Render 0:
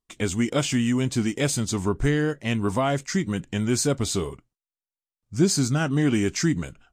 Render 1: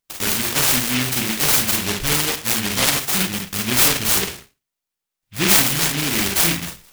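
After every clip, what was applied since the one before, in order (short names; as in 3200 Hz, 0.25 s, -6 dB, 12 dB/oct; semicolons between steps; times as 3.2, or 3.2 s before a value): tilt shelf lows -8 dB, about 830 Hz; reverb RT60 0.30 s, pre-delay 32 ms, DRR 0 dB; noise-modulated delay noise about 2400 Hz, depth 0.47 ms; gain +3 dB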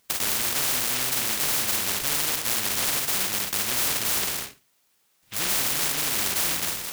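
HPF 110 Hz 6 dB/oct; soft clip -12.5 dBFS, distortion -14 dB; spectral compressor 4:1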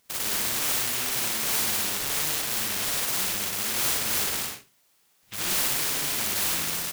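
limiter -20.5 dBFS, peak gain reduction 7.5 dB; on a send: loudspeakers at several distances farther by 20 m -1 dB, 34 m -4 dB; on the sum: gain -1.5 dB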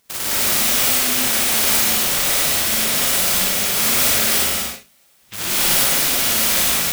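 non-linear reverb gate 0.23 s rising, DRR -4.5 dB; gain +4 dB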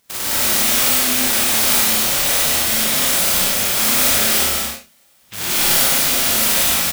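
doubler 28 ms -5 dB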